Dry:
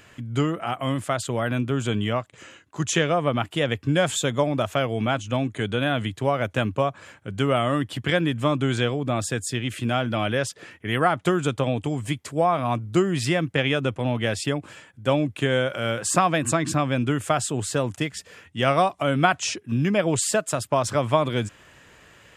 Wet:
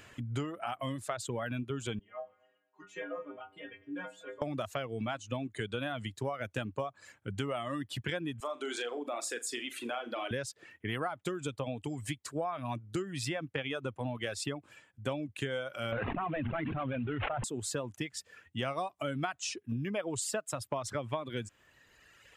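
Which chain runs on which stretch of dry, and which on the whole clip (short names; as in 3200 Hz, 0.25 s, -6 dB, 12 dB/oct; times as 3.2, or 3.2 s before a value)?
1.99–4.42 regenerating reverse delay 0.119 s, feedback 42%, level -10.5 dB + three-band isolator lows -17 dB, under 200 Hz, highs -20 dB, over 2500 Hz + metallic resonator 93 Hz, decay 0.75 s, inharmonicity 0.008
8.4–10.31 HPF 310 Hz 24 dB/oct + compressor 2:1, threshold -29 dBFS + flutter echo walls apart 7.1 m, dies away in 0.32 s
15.92–17.44 CVSD 16 kbps + notch 340 Hz, Q 11 + fast leveller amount 100%
whole clip: reverb removal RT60 1.7 s; compressor 4:1, threshold -30 dBFS; bell 170 Hz -4 dB 0.3 oct; gain -3 dB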